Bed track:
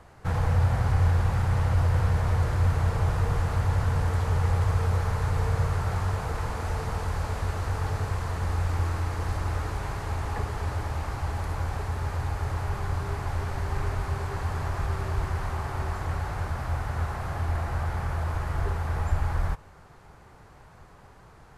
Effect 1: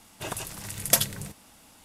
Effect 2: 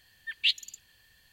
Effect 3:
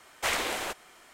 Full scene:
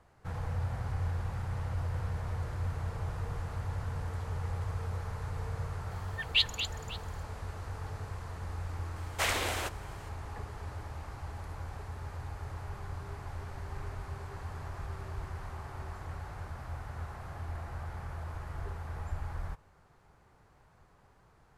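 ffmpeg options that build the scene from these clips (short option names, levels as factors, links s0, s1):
-filter_complex "[0:a]volume=0.266[s0];[2:a]aecho=1:1:233|544:0.335|0.112,atrim=end=1.32,asetpts=PTS-STARTPTS,volume=0.891,afade=t=in:d=0.004:c=hsin,afade=t=out:st=1.316:d=0.004:c=hsin,adelay=5910[s1];[3:a]atrim=end=1.13,asetpts=PTS-STARTPTS,volume=0.794,afade=t=in:d=0.004:c=hsin,afade=t=out:st=1.126:d=0.004:c=hsin,adelay=8960[s2];[s0][s1][s2]amix=inputs=3:normalize=0"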